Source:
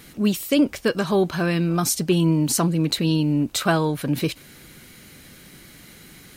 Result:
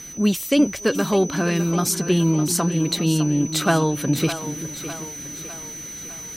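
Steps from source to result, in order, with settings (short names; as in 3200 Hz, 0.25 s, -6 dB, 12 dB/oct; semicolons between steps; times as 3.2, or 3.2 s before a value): vocal rider 2 s; whine 6000 Hz -36 dBFS; split-band echo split 370 Hz, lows 0.384 s, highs 0.605 s, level -11 dB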